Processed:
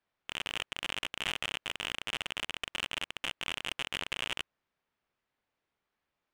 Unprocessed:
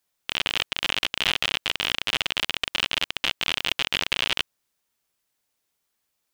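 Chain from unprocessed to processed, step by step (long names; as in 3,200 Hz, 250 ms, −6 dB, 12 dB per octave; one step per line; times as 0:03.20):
low-pass filter 2,300 Hz 12 dB per octave
soft clipping −22 dBFS, distortion −7 dB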